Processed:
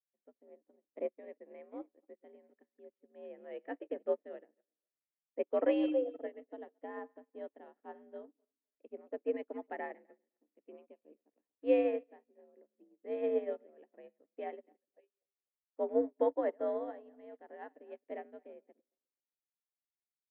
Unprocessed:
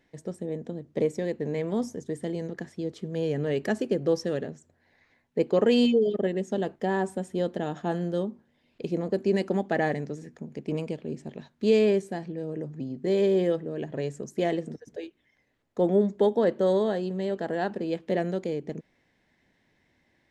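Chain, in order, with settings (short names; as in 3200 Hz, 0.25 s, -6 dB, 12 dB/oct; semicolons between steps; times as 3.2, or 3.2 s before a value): regenerating reverse delay 0.128 s, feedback 46%, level -13 dB; mistuned SSB +68 Hz 190–2600 Hz; upward expander 2.5:1, over -45 dBFS; gain -5 dB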